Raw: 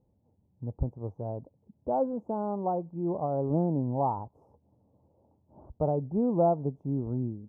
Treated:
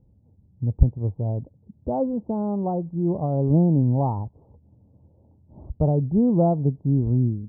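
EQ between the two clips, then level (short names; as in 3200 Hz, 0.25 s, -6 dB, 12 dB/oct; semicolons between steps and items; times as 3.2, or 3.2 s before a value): LPF 1400 Hz 12 dB/oct; low shelf 170 Hz +9 dB; low shelf 470 Hz +10 dB; -2.5 dB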